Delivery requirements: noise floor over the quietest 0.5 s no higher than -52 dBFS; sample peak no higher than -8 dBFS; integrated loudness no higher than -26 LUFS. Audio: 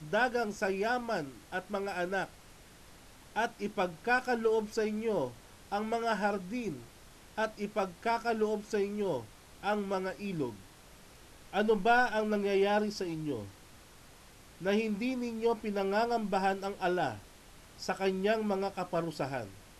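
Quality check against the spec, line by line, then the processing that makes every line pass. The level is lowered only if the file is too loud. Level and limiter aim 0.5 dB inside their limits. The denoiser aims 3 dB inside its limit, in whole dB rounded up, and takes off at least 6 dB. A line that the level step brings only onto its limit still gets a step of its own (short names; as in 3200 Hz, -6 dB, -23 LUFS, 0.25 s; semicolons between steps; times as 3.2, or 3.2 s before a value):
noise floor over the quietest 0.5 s -55 dBFS: OK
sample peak -16.0 dBFS: OK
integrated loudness -33.0 LUFS: OK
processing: none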